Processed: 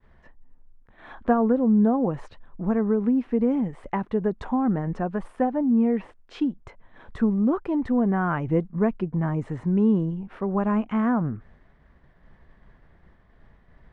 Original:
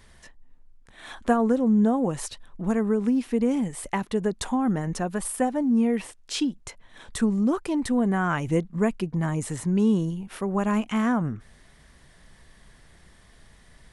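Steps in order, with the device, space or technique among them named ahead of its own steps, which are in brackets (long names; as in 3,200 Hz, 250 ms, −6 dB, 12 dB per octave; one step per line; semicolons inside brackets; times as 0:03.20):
hearing-loss simulation (low-pass filter 1,500 Hz 12 dB per octave; downward expander −50 dBFS)
level +1 dB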